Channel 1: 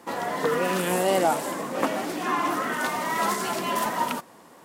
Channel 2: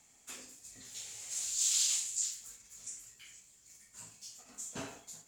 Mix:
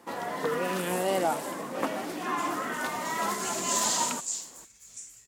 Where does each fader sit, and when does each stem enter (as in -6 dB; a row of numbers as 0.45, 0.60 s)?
-5.0, +1.5 dB; 0.00, 2.10 s